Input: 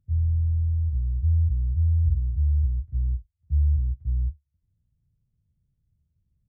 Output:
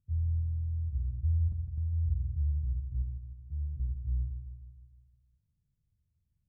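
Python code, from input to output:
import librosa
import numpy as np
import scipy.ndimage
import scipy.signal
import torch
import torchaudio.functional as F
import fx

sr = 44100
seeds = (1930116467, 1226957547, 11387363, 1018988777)

y = fx.level_steps(x, sr, step_db=11, at=(1.47, 2.08), fade=0.02)
y = fx.low_shelf(y, sr, hz=130.0, db=-8.5, at=(3.02, 3.8))
y = fx.echo_feedback(y, sr, ms=155, feedback_pct=56, wet_db=-8)
y = y * 10.0 ** (-7.5 / 20.0)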